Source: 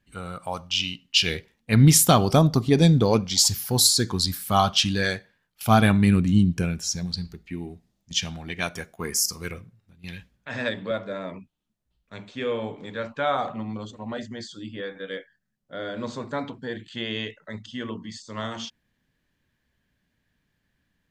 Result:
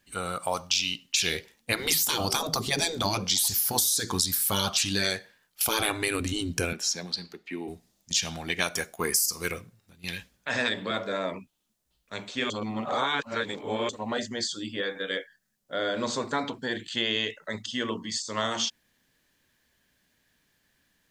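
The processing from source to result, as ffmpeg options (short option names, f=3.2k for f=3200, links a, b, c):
-filter_complex "[0:a]asettb=1/sr,asplit=3[a][b][c];[a]atrim=end=6.734[d];[b]atrim=start=6.73:end=7.68,asetpts=PTS-STARTPTS,afade=t=in:d=0.004:c=qsin,afade=t=out:st=0.946:d=0.004:c=qsin,acrossover=split=220 4000:gain=0.0794 1 0.224[e][f][g];[e][f][g]amix=inputs=3:normalize=0[h];[c]atrim=start=7.676[i];[d][h]acrossfade=d=0.004:c1=hsin:c2=qsin[j];[j][i]acrossfade=d=0.004:c1=qsin:c2=hsin,asplit=3[k][l][m];[k]atrim=end=12.502[n];[l]atrim=start=12.498:end=13.892,asetpts=PTS-STARTPTS,areverse[o];[m]atrim=start=13.888[p];[n][o]acrossfade=d=0.004:c1=hsin:c2=hsin[q];[q][p]acrossfade=d=0.004:c1=hsin:c2=hsin,bass=f=250:g=-9,treble=f=4k:g=8,afftfilt=real='re*lt(hypot(re,im),0.251)':imag='im*lt(hypot(re,im),0.251)':win_size=1024:overlap=0.75,acompressor=threshold=-27dB:ratio=6,volume=5dB"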